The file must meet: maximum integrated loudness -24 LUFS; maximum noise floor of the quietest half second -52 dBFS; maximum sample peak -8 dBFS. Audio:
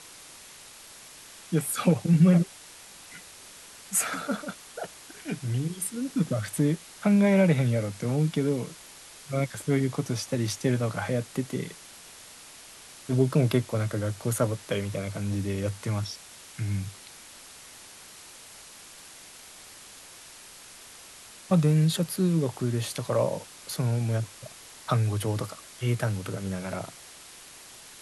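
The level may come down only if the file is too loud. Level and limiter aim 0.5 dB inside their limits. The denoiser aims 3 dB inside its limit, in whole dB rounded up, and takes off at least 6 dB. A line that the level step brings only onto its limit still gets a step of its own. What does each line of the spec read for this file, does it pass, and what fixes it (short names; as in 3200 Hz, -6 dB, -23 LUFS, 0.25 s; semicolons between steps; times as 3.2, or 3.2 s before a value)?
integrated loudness -27.5 LUFS: OK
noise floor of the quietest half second -48 dBFS: fail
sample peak -10.0 dBFS: OK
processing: denoiser 7 dB, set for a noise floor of -48 dBFS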